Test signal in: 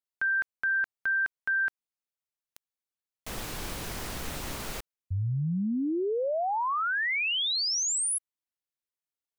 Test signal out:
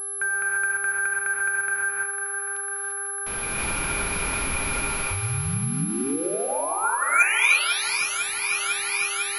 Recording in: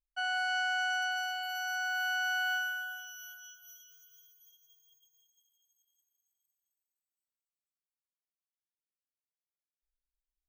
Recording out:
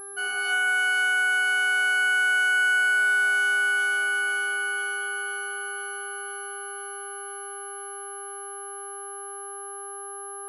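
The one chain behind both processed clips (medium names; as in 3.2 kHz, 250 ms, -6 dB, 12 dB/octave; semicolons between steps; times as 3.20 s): peaking EQ 900 Hz +4.5 dB 0.3 oct; on a send: thinning echo 500 ms, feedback 78%, high-pass 760 Hz, level -7.5 dB; on the sum: mains buzz 400 Hz, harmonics 4, -46 dBFS -4 dB/octave; gated-style reverb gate 370 ms rising, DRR -5.5 dB; compression 6:1, threshold -24 dBFS; band-stop 750 Hz, Q 18; small resonant body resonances 1.4/2.4 kHz, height 14 dB, ringing for 45 ms; dynamic bell 2.3 kHz, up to +8 dB, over -48 dBFS, Q 4.9; class-D stage that switches slowly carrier 11 kHz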